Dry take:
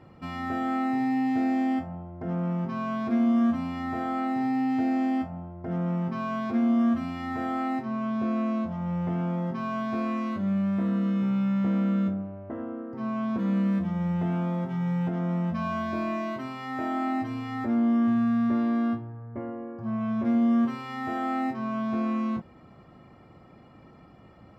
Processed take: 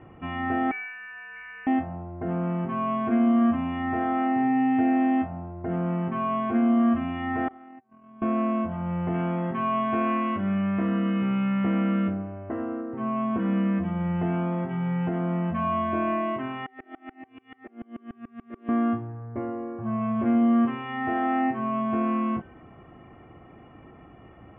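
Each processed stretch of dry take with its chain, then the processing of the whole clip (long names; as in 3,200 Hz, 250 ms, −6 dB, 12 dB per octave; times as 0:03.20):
0:00.71–0:01.67: Butterworth high-pass 1,300 Hz + high-shelf EQ 2,800 Hz −8 dB + voice inversion scrambler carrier 3,600 Hz
0:07.48–0:08.22: noise gate −27 dBFS, range −42 dB + downward compressor 2.5 to 1, threshold −51 dBFS
0:09.14–0:12.81: Bessel low-pass filter 3,000 Hz + high-shelf EQ 2,200 Hz +11 dB
0:16.66–0:18.69: high-pass filter 420 Hz + parametric band 940 Hz −13.5 dB 1.5 octaves + tremolo with a ramp in dB swelling 6.9 Hz, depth 37 dB
whole clip: Butterworth low-pass 3,100 Hz 72 dB per octave; comb filter 2.7 ms, depth 33%; hum removal 385 Hz, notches 38; level +3.5 dB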